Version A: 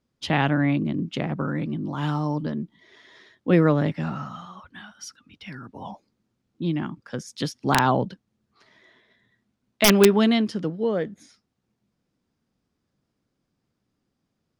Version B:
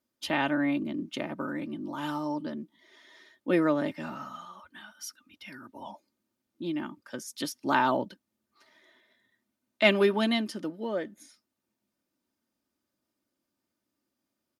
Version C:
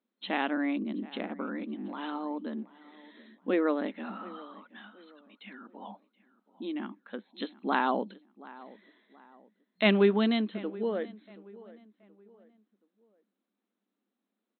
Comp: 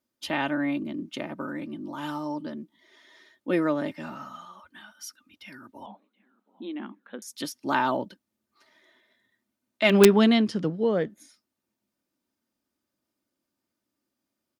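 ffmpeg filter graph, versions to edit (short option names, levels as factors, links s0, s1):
-filter_complex "[1:a]asplit=3[s0][s1][s2];[s0]atrim=end=5.862[s3];[2:a]atrim=start=5.858:end=7.222[s4];[s1]atrim=start=7.218:end=9.95[s5];[0:a]atrim=start=9.89:end=11.11[s6];[s2]atrim=start=11.05[s7];[s3][s4]acrossfade=d=0.004:c1=hsin:c2=hsin[s8];[s8][s5]acrossfade=d=0.004:c1=hsin:c2=hsin[s9];[s9][s6]acrossfade=d=0.06:c1=tri:c2=tri[s10];[s10][s7]acrossfade=d=0.06:c1=tri:c2=tri"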